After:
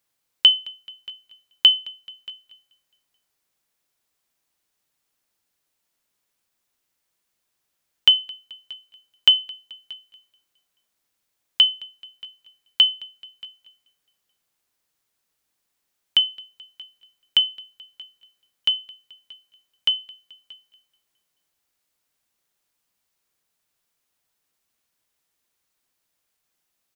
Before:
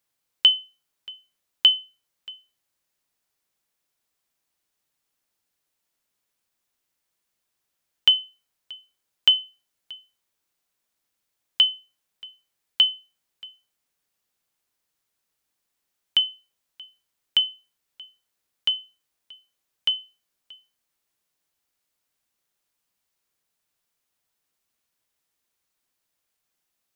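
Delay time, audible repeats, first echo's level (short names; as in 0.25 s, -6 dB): 0.216 s, 3, -23.0 dB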